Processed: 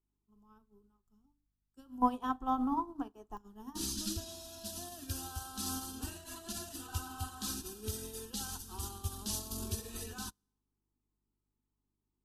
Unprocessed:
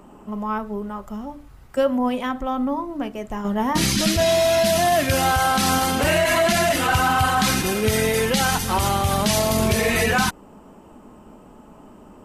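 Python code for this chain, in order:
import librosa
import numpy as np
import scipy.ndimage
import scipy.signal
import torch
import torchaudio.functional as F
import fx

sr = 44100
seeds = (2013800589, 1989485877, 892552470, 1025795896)

y = fx.peak_eq(x, sr, hz=870.0, db=fx.steps((0.0, -13.5), (2.02, 3.0), (3.37, -11.5)), octaves=2.5)
y = fx.fixed_phaser(y, sr, hz=570.0, stages=6)
y = fx.add_hum(y, sr, base_hz=50, snr_db=20)
y = fx.hum_notches(y, sr, base_hz=60, count=5)
y = fx.rev_schroeder(y, sr, rt60_s=0.98, comb_ms=27, drr_db=17.5)
y = fx.upward_expand(y, sr, threshold_db=-43.0, expansion=2.5)
y = y * 10.0 ** (-3.0 / 20.0)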